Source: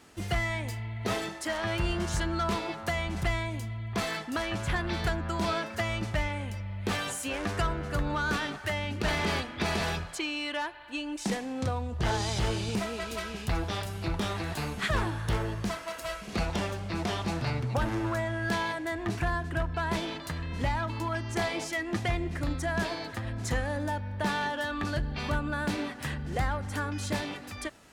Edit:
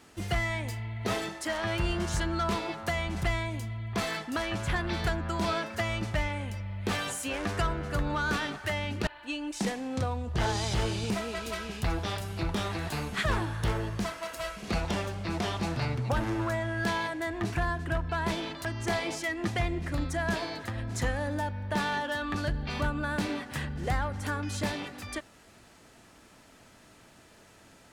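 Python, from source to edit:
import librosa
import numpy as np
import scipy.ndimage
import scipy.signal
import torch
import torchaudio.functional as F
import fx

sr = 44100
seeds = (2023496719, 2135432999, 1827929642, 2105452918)

y = fx.edit(x, sr, fx.cut(start_s=9.07, length_s=1.65),
    fx.cut(start_s=20.3, length_s=0.84), tone=tone)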